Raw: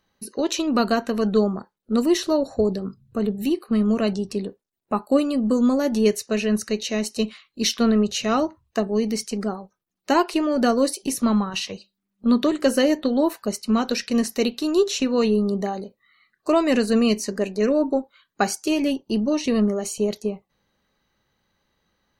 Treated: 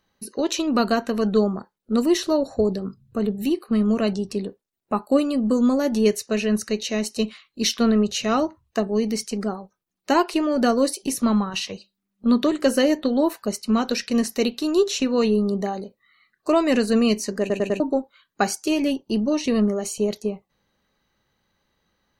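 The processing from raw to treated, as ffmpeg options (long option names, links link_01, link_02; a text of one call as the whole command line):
ffmpeg -i in.wav -filter_complex "[0:a]asplit=5[link_01][link_02][link_03][link_04][link_05];[link_01]atrim=end=17.502[link_06];[link_02]atrim=start=17.398:end=17.502[link_07];[link_03]atrim=start=17.398:end=17.502[link_08];[link_04]atrim=start=17.398:end=17.502[link_09];[link_05]atrim=start=17.798[link_10];[link_06][link_07]acrossfade=duration=0.004:curve1=hsin:curve2=hsin[link_11];[link_11][link_08]acrossfade=duration=0.004:curve1=hsin:curve2=hsin[link_12];[link_12][link_09]acrossfade=duration=0.004:curve1=hsin:curve2=hsin[link_13];[link_13][link_10]acrossfade=duration=0.004:curve1=hsin:curve2=hsin" out.wav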